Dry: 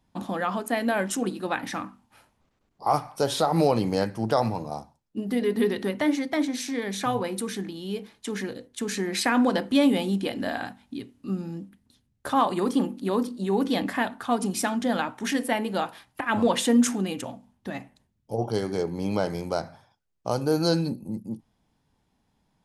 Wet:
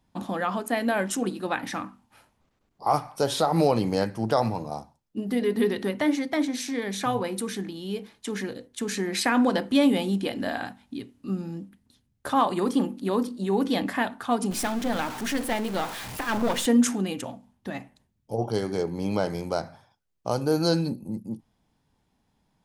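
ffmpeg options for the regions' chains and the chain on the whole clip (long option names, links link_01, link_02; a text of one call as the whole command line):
ffmpeg -i in.wav -filter_complex "[0:a]asettb=1/sr,asplit=3[link_01][link_02][link_03];[link_01]atrim=end=14.514[link_04];[link_02]atrim=start=14.51:end=16.66,asetpts=PTS-STARTPTS,afade=type=in:duration=0.004:curve=qsin,afade=type=out:start_time=2.146:duration=0.004:curve=qsin,aeval=exprs='val(0)+0.5*0.0473*sgn(val(0))':channel_layout=same,aeval=exprs='(tanh(8.91*val(0)+0.8)-tanh(0.8))/8.91':channel_layout=same[link_05];[link_03]atrim=start=16.656[link_06];[link_04][link_05]acrossfade=duration=0.004:curve1=hsin:curve2=qsin[link_07];[link_07][link_06]acrossfade=duration=0.004:curve1=qsin:curve2=hsin" out.wav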